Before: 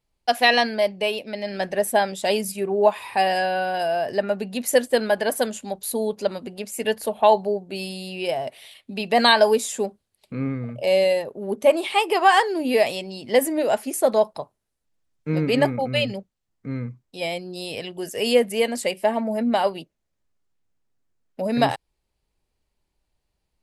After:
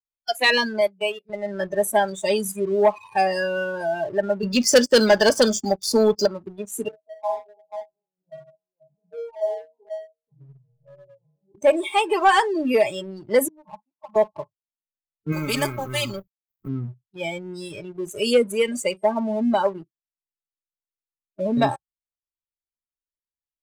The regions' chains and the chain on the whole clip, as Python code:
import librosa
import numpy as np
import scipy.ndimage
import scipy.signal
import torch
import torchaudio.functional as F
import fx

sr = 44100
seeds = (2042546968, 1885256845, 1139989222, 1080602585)

y = fx.chain(x, sr, fx.highpass(hz=140.0, slope=12),
    fx.high_shelf(hz=7500.0, db=7.5),
    fx.upward_expand(threshold_db=-37.0, expansion=1.5), at=(0.81, 1.3))
y = fx.chain(y, sr, fx.lowpass_res(hz=5300.0, q=4.0),
    fx.notch(hz=3900.0, q=10.0),
    fx.leveller(passes=2), at=(4.43, 6.26))
y = fx.chain(y, sr, fx.brickwall_lowpass(high_hz=1100.0),
    fx.stiff_resonator(f0_hz=150.0, decay_s=0.56, stiffness=0.008),
    fx.echo_multitap(ms=(45, 485), db=(-4.0, -8.0)), at=(6.88, 11.55))
y = fx.chain(y, sr, fx.double_bandpass(hz=420.0, octaves=2.4),
    fx.air_absorb(metres=440.0), at=(13.48, 14.16))
y = fx.chain(y, sr, fx.law_mismatch(coded='A'),
    fx.high_shelf(hz=6600.0, db=-4.5),
    fx.spectral_comp(ratio=2.0), at=(15.32, 16.68))
y = fx.noise_reduce_blind(y, sr, reduce_db=28)
y = fx.leveller(y, sr, passes=1)
y = y * 10.0 ** (-2.5 / 20.0)